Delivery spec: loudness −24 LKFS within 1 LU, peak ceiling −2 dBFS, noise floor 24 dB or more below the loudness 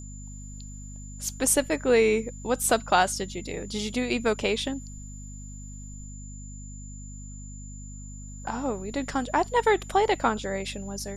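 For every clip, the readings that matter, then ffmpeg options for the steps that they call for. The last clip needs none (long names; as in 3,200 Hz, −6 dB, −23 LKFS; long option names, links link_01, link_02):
mains hum 50 Hz; hum harmonics up to 250 Hz; level of the hum −38 dBFS; interfering tone 7,100 Hz; level of the tone −46 dBFS; integrated loudness −26.0 LKFS; sample peak −8.0 dBFS; target loudness −24.0 LKFS
→ -af "bandreject=frequency=50:width_type=h:width=4,bandreject=frequency=100:width_type=h:width=4,bandreject=frequency=150:width_type=h:width=4,bandreject=frequency=200:width_type=h:width=4,bandreject=frequency=250:width_type=h:width=4"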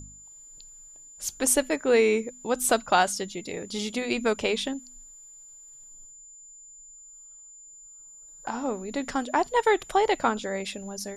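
mains hum none found; interfering tone 7,100 Hz; level of the tone −46 dBFS
→ -af "bandreject=frequency=7100:width=30"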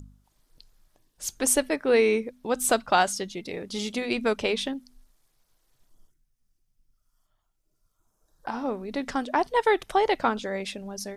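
interfering tone none found; integrated loudness −26.0 LKFS; sample peak −8.0 dBFS; target loudness −24.0 LKFS
→ -af "volume=2dB"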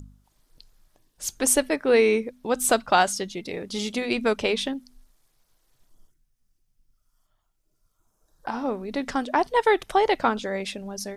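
integrated loudness −24.0 LKFS; sample peak −6.0 dBFS; background noise floor −72 dBFS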